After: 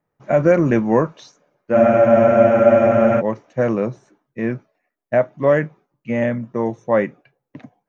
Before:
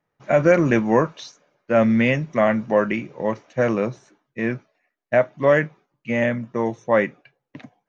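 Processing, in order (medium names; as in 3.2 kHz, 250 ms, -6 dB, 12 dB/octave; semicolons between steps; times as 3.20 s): peaking EQ 3.8 kHz -8.5 dB 2.8 oct; spectral freeze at 1.76 s, 1.43 s; trim +2.5 dB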